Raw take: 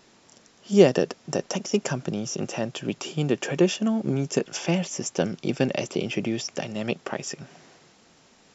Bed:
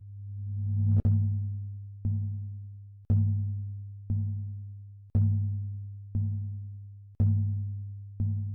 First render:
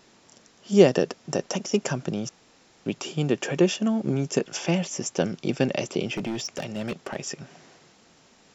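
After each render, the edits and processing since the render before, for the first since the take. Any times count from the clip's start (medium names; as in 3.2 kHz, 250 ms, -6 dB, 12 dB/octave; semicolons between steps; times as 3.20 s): 2.29–2.86 s: room tone; 6.14–7.16 s: hard clipper -25 dBFS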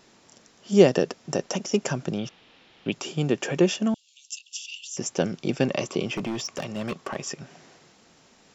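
2.18–2.92 s: resonant low-pass 3.2 kHz, resonance Q 2.8; 3.94–4.97 s: rippled Chebyshev high-pass 2.7 kHz, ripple 3 dB; 5.64–7.32 s: peaking EQ 1.1 kHz +11 dB 0.2 oct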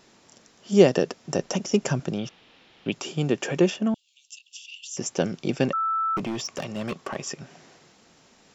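1.36–2.00 s: bass shelf 140 Hz +9 dB; 3.70–4.83 s: peaking EQ 6.6 kHz -8.5 dB 1.9 oct; 5.73–6.17 s: bleep 1.32 kHz -22 dBFS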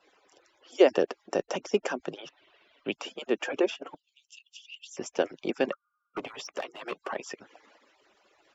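harmonic-percussive separation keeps percussive; three-band isolator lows -17 dB, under 290 Hz, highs -13 dB, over 3.6 kHz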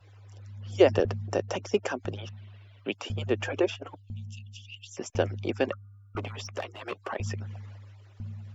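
add bed -9.5 dB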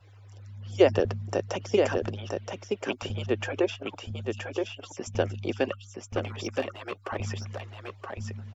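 delay 973 ms -4.5 dB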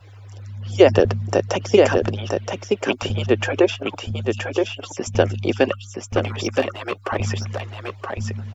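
trim +9.5 dB; peak limiter -1 dBFS, peak gain reduction 3 dB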